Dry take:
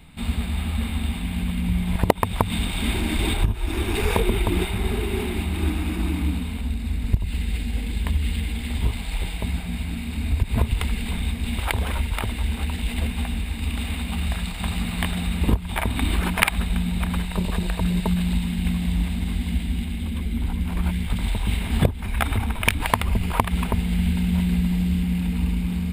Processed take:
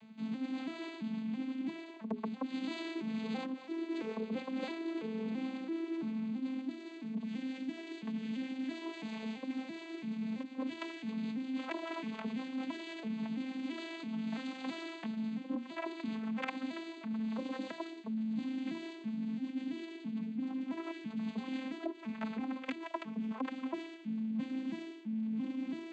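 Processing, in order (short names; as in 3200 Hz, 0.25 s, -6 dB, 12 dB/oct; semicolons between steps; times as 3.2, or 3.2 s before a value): arpeggiated vocoder minor triad, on A3, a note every 0.334 s; notches 60/120/180/240/300/360/420 Hz; reverse; compressor 12:1, threshold -32 dBFS, peak gain reduction 19 dB; reverse; gain -2.5 dB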